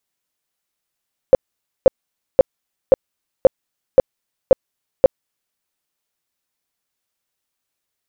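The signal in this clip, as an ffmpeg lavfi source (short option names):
-f lavfi -i "aevalsrc='0.708*sin(2*PI*528*mod(t,0.53))*lt(mod(t,0.53),10/528)':d=4.24:s=44100"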